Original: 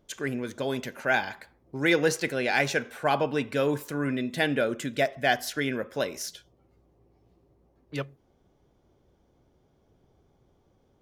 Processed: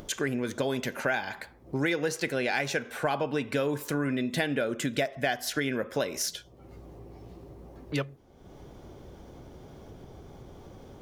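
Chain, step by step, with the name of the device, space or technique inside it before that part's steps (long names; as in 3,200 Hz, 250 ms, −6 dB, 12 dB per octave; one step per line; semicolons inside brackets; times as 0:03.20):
upward and downward compression (upward compression, threshold −42 dBFS; downward compressor 6 to 1, threshold −32 dBFS, peak gain reduction 13.5 dB)
level +6.5 dB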